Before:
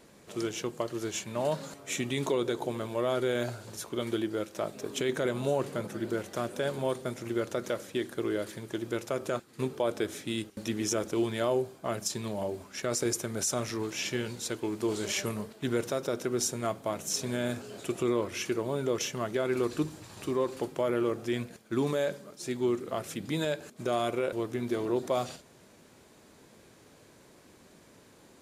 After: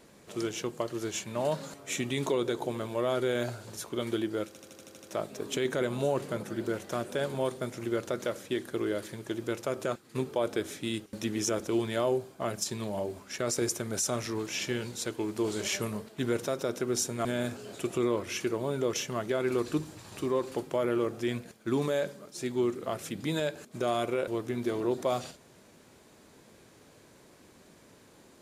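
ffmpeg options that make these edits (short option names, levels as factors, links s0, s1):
-filter_complex "[0:a]asplit=9[s0][s1][s2][s3][s4][s5][s6][s7][s8];[s0]atrim=end=4.552[s9];[s1]atrim=start=4.468:end=4.552[s10];[s2]atrim=start=4.468:end=4.552[s11];[s3]atrim=start=4.468:end=4.552[s12];[s4]atrim=start=4.468:end=4.552[s13];[s5]atrim=start=4.468:end=4.552[s14];[s6]atrim=start=4.468:end=4.552[s15];[s7]atrim=start=4.468:end=16.692[s16];[s8]atrim=start=17.298[s17];[s9][s10]acrossfade=d=0.004:c1=hsin:c2=hsin[s18];[s18][s11]acrossfade=d=0.004:c1=hsin:c2=hsin[s19];[s19][s12]acrossfade=d=0.004:c1=hsin:c2=hsin[s20];[s20][s13]acrossfade=d=0.004:c1=hsin:c2=hsin[s21];[s21][s14]acrossfade=d=0.004:c1=hsin:c2=hsin[s22];[s22][s15]acrossfade=d=0.004:c1=hsin:c2=hsin[s23];[s23][s16]acrossfade=d=0.004:c1=hsin:c2=hsin[s24];[s24][s17]acrossfade=d=0.004:c1=hsin:c2=hsin"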